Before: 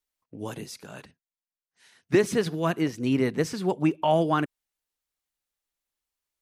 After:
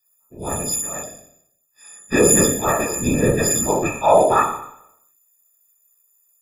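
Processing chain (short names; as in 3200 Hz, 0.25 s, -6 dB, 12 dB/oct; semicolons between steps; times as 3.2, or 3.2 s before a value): frequency quantiser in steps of 6 st; flutter echo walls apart 4.7 m, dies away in 0.73 s; whisperiser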